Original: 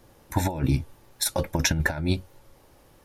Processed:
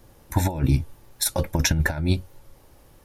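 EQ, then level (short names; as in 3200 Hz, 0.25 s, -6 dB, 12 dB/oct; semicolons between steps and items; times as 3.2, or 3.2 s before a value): low shelf 120 Hz +7 dB; high shelf 8100 Hz +4.5 dB; 0.0 dB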